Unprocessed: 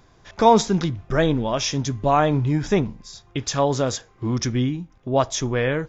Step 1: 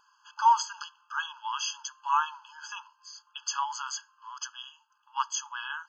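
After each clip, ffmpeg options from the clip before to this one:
-af "afftfilt=real='re*eq(mod(floor(b*sr/1024/850),2),1)':imag='im*eq(mod(floor(b*sr/1024/850),2),1)':win_size=1024:overlap=0.75,volume=0.75"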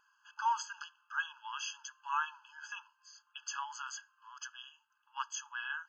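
-af "equalizer=f=1000:t=o:w=1:g=-6,equalizer=f=2000:t=o:w=1:g=12,equalizer=f=4000:t=o:w=1:g=-7,volume=0.447"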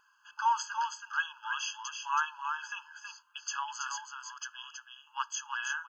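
-af "aecho=1:1:325:0.531,volume=1.58"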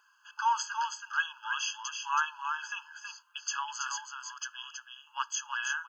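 -af "highpass=f=930:p=1,volume=1.41"

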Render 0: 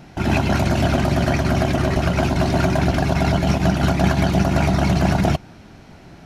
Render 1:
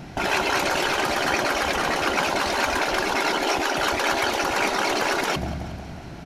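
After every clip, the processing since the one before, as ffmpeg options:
-af "aecho=1:1:182|364|546|728|910|1092:0.141|0.0833|0.0492|0.029|0.0171|0.0101,afftfilt=real='re*lt(hypot(re,im),0.316)':imag='im*lt(hypot(re,im),0.316)':win_size=1024:overlap=0.75,volume=1.58"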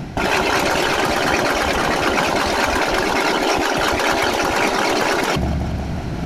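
-af "areverse,acompressor=mode=upward:threshold=0.0562:ratio=2.5,areverse,lowshelf=f=400:g=5.5,volume=1.58"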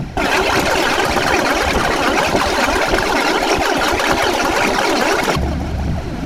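-af "aphaser=in_gain=1:out_gain=1:delay=4.3:decay=0.47:speed=1.7:type=triangular,volume=1.19"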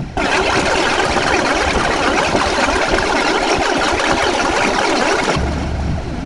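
-af "aecho=1:1:283|566|849|1132:0.224|0.094|0.0395|0.0166,aresample=22050,aresample=44100"

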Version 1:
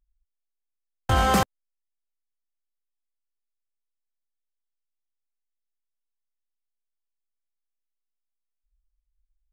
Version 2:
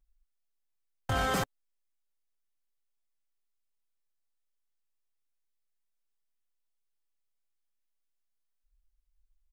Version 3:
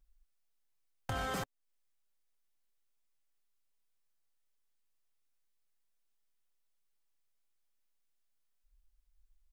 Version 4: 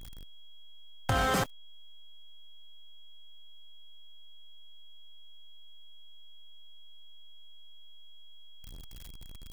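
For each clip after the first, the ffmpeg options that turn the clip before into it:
-af "aecho=1:1:7.1:0.53,alimiter=limit=0.0841:level=0:latency=1:release=24"
-af "acompressor=threshold=0.00562:ratio=2,volume=1.33"
-af "aeval=exprs='val(0)+0.5*0.00376*sgn(val(0))':c=same,aeval=exprs='val(0)+0.000631*sin(2*PI*3300*n/s)':c=same,volume=2.66"

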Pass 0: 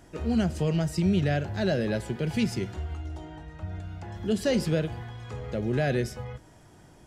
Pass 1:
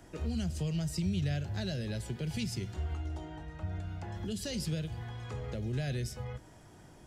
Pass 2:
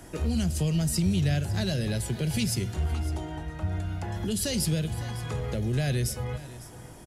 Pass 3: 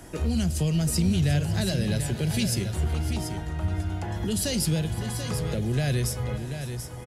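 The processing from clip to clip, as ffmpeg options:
-filter_complex "[0:a]acrossover=split=150|3000[s0][s1][s2];[s1]acompressor=threshold=0.0112:ratio=6[s3];[s0][s3][s2]amix=inputs=3:normalize=0,volume=0.841"
-filter_complex "[0:a]aecho=1:1:555:0.15,asplit=2[s0][s1];[s1]aeval=exprs='clip(val(0),-1,0.0237)':c=same,volume=0.708[s2];[s0][s2]amix=inputs=2:normalize=0,equalizer=f=11000:t=o:w=0.63:g=11,volume=1.41"
-af "aecho=1:1:735:0.376,volume=1.19"

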